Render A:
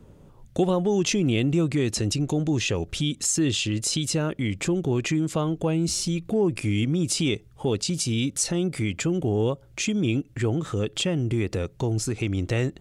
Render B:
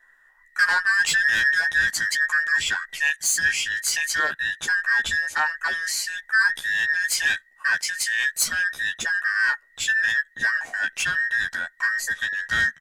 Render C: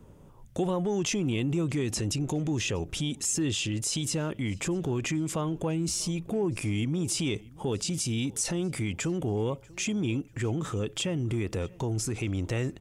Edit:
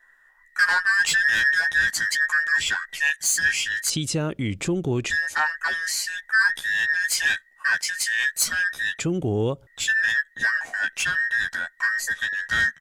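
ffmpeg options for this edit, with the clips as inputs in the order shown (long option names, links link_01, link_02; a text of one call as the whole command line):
ffmpeg -i take0.wav -i take1.wav -filter_complex "[0:a]asplit=2[link_01][link_02];[1:a]asplit=3[link_03][link_04][link_05];[link_03]atrim=end=3.902[link_06];[link_01]atrim=start=3.898:end=5.102[link_07];[link_04]atrim=start=5.098:end=8.992[link_08];[link_02]atrim=start=8.988:end=9.672[link_09];[link_05]atrim=start=9.668[link_10];[link_06][link_07]acrossfade=duration=0.004:curve1=hsin:curve2=hsin[link_11];[link_11][link_08]acrossfade=duration=0.004:curve1=hsin:curve2=hsin[link_12];[link_12][link_09]acrossfade=duration=0.004:curve1=hsin:curve2=hsin[link_13];[link_13][link_10]acrossfade=duration=0.004:curve1=hsin:curve2=hsin" out.wav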